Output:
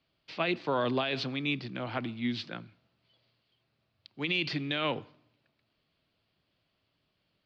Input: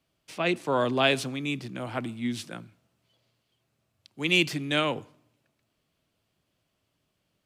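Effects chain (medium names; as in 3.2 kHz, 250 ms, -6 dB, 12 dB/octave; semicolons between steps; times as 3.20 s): elliptic low-pass 4.6 kHz, stop band 70 dB; treble shelf 3 kHz +6 dB; peak limiter -18 dBFS, peak gain reduction 13 dB; trim -1 dB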